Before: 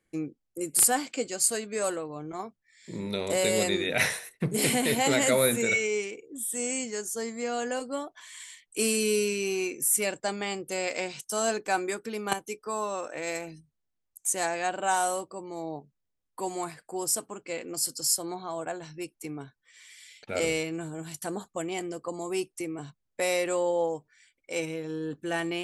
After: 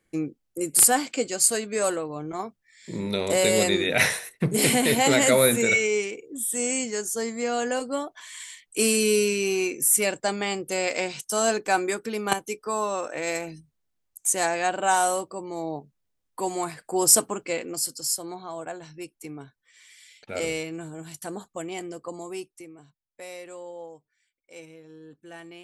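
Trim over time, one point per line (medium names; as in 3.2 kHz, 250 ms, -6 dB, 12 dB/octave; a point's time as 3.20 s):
16.68 s +4.5 dB
17.19 s +12 dB
17.97 s -1 dB
22.15 s -1 dB
22.85 s -13 dB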